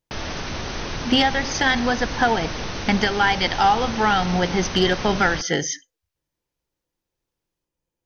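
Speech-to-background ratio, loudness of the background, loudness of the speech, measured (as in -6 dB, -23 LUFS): 8.5 dB, -29.5 LUFS, -21.0 LUFS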